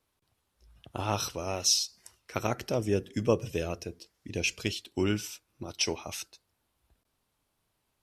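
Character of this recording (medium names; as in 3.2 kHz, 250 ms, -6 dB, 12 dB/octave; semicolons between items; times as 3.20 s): noise floor -79 dBFS; spectral tilt -3.5 dB/octave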